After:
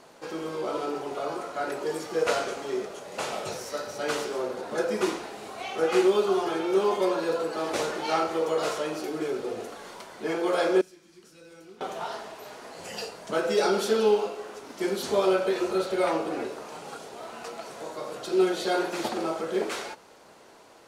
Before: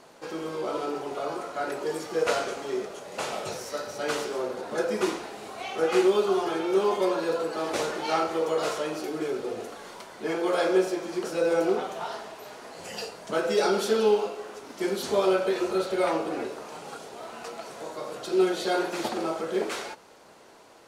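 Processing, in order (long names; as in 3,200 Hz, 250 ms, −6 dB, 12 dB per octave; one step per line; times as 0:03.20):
0:10.81–0:11.81: guitar amp tone stack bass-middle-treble 6-0-2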